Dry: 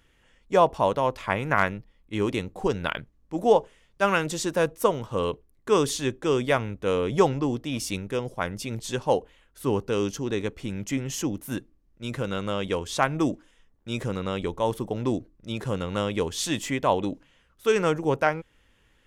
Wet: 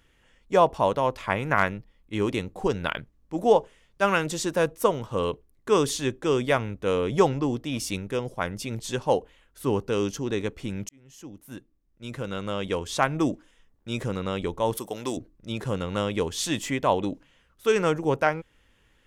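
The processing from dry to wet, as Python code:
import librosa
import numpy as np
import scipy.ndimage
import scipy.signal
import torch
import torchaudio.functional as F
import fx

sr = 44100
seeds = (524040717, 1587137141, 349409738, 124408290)

y = fx.riaa(x, sr, side='recording', at=(14.77, 15.17))
y = fx.edit(y, sr, fx.fade_in_span(start_s=10.89, length_s=1.97), tone=tone)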